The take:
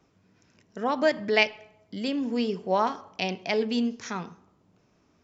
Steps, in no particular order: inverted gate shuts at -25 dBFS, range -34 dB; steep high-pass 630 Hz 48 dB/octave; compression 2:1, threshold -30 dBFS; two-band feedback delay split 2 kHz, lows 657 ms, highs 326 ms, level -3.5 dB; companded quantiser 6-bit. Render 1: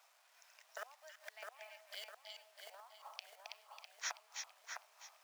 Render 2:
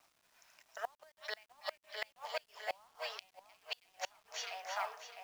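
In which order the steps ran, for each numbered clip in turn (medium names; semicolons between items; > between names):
inverted gate > compression > two-band feedback delay > companded quantiser > steep high-pass; steep high-pass > compression > two-band feedback delay > inverted gate > companded quantiser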